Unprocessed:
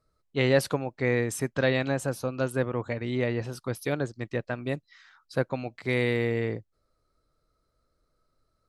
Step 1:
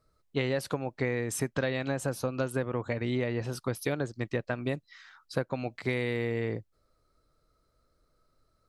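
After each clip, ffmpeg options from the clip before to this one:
-af "acompressor=threshold=-28dB:ratio=10,volume=2.5dB"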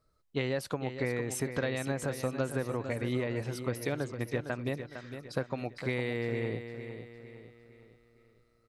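-af "aecho=1:1:457|914|1371|1828|2285:0.335|0.144|0.0619|0.0266|0.0115,volume=-2.5dB"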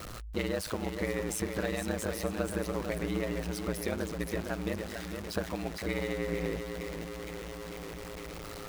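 -af "aeval=exprs='val(0)+0.5*0.0211*sgn(val(0))':c=same,aeval=exprs='val(0)*sin(2*PI*54*n/s)':c=same"

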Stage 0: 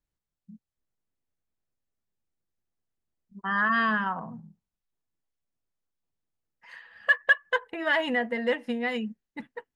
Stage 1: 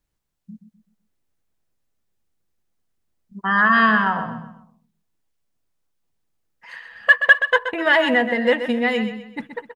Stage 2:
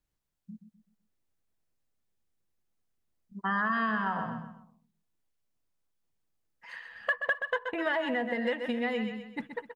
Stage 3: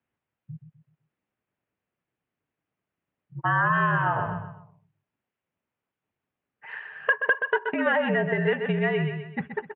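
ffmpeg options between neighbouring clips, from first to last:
-af "aecho=1:1:127|254|381|508:0.316|0.114|0.041|0.0148,volume=8.5dB"
-filter_complex "[0:a]acrossover=split=1300|4400[a][b][c];[a]acompressor=threshold=-23dB:ratio=4[d];[b]acompressor=threshold=-31dB:ratio=4[e];[c]acompressor=threshold=-55dB:ratio=4[f];[d][e][f]amix=inputs=3:normalize=0,volume=-6dB"
-af "highpass=f=160:t=q:w=0.5412,highpass=f=160:t=q:w=1.307,lowpass=f=2.9k:t=q:w=0.5176,lowpass=f=2.9k:t=q:w=0.7071,lowpass=f=2.9k:t=q:w=1.932,afreqshift=-59,volume=6.5dB"

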